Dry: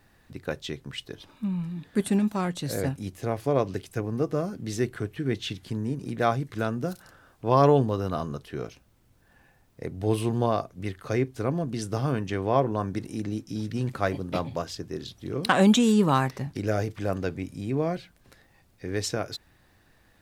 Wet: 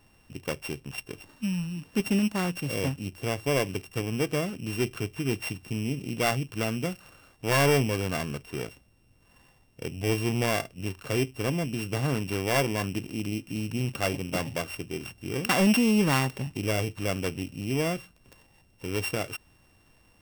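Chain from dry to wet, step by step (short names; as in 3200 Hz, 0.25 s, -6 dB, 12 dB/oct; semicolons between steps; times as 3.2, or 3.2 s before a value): sample sorter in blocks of 16 samples; soft clip -15.5 dBFS, distortion -14 dB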